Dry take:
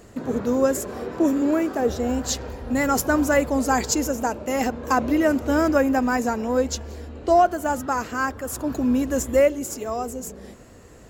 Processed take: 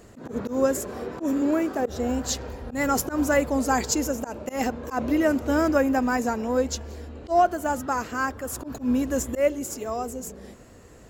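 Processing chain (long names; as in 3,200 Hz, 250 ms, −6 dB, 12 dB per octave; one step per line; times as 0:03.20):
volume swells 111 ms
level −2 dB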